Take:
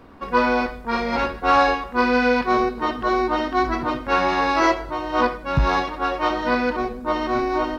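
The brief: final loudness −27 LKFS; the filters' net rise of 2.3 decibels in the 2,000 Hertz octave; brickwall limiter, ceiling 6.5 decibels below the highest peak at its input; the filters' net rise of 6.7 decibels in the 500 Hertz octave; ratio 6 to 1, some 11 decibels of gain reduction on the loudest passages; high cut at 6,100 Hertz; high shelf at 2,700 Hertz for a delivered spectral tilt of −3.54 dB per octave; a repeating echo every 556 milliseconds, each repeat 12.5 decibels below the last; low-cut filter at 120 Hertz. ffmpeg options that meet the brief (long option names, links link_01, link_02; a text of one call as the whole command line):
ffmpeg -i in.wav -af "highpass=120,lowpass=6100,equalizer=frequency=500:width_type=o:gain=8,equalizer=frequency=2000:width_type=o:gain=5,highshelf=frequency=2700:gain=-6,acompressor=threshold=-21dB:ratio=6,alimiter=limit=-17.5dB:level=0:latency=1,aecho=1:1:556|1112|1668:0.237|0.0569|0.0137,volume=-0.5dB" out.wav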